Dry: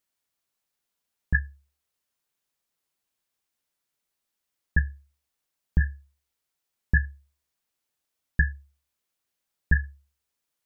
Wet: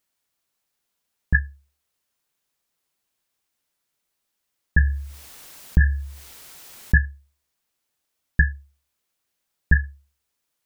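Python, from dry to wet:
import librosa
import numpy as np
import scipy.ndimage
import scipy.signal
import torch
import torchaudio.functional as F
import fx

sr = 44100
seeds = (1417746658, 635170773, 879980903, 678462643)

y = fx.env_flatten(x, sr, amount_pct=50, at=(4.78, 6.95), fade=0.02)
y = y * 10.0 ** (4.5 / 20.0)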